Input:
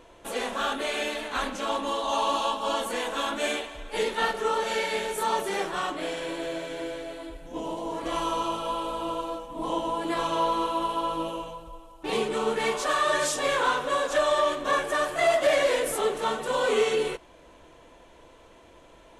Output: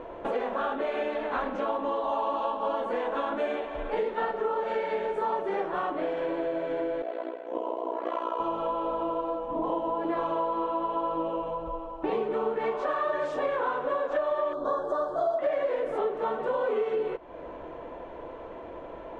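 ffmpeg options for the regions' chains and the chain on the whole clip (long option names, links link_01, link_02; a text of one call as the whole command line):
ffmpeg -i in.wav -filter_complex "[0:a]asettb=1/sr,asplit=3[link_01][link_02][link_03];[link_01]atrim=end=7.024[link_04];[link_02]atrim=start=7.02:end=8.4,asetpts=PTS-STARTPTS,afade=type=in:duration=0.004:curve=qsin,afade=type=out:start_time=1.376:duration=0.004:curve=qsin,highpass=frequency=360:width=0.5412,highpass=frequency=360:width=1.3066,bandreject=frequency=790:width=7.4,tremolo=f=60:d=0.889[link_05];[link_03]atrim=start=8.396[link_06];[link_04][link_05]acrossfade=duration=0.004:curve1=hsin:curve2=qsin[link_07];[link_07][link_06]acrossfade=duration=0.004:curve1=qsin:curve2=hsin,asettb=1/sr,asplit=3[link_08][link_09][link_10];[link_08]atrim=end=14.534[link_11];[link_09]atrim=start=14.53:end=15.39,asetpts=PTS-STARTPTS,afade=type=in:duration=0.004:curve=qsin,afade=type=out:start_time=0.856:duration=0.004:curve=qsin,asuperstop=centerf=2300:order=8:qfactor=1.1,highshelf=frequency=4400:gain=5.5[link_12];[link_10]atrim=start=15.386[link_13];[link_11][link_12]acrossfade=duration=0.004:curve1=hsin:curve2=qsin[link_14];[link_14][link_13]acrossfade=duration=0.004:curve1=qsin:curve2=hsin,lowpass=2000,equalizer=frequency=550:width_type=o:width=2.5:gain=9,acompressor=threshold=-34dB:ratio=4,volume=5dB" out.wav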